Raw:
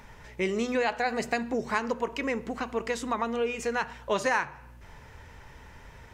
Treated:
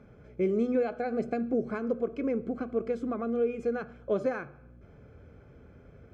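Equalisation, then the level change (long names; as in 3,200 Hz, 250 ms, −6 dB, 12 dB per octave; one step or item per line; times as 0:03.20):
moving average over 47 samples
high-pass filter 54 Hz
low-shelf EQ 140 Hz −10 dB
+6.0 dB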